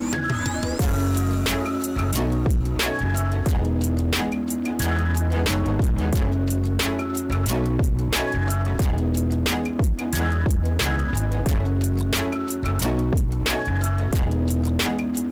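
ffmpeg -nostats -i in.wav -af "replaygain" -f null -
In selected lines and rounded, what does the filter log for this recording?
track_gain = +6.8 dB
track_peak = 0.097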